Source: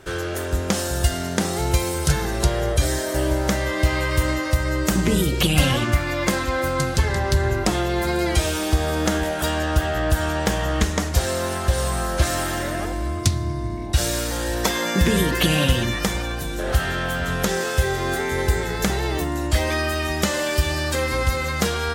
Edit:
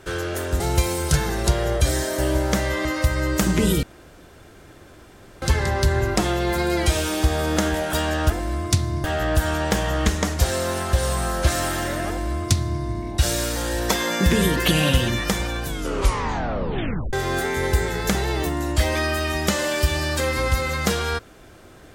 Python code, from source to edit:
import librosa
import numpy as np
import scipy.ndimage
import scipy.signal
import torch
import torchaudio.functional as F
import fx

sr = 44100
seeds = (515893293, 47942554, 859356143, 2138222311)

y = fx.edit(x, sr, fx.cut(start_s=0.6, length_s=0.96),
    fx.cut(start_s=3.81, length_s=0.53),
    fx.room_tone_fill(start_s=5.32, length_s=1.59),
    fx.duplicate(start_s=12.83, length_s=0.74, to_s=9.79),
    fx.tape_stop(start_s=16.41, length_s=1.47), tone=tone)